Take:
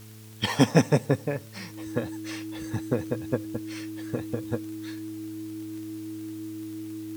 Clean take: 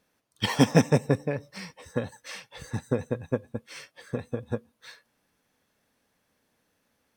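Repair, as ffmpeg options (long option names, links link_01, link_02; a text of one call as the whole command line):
ffmpeg -i in.wav -af "adeclick=threshold=4,bandreject=frequency=108.6:width_type=h:width=4,bandreject=frequency=217.2:width_type=h:width=4,bandreject=frequency=325.8:width_type=h:width=4,bandreject=frequency=434.4:width_type=h:width=4,bandreject=frequency=320:width=30,afwtdn=0.0022" out.wav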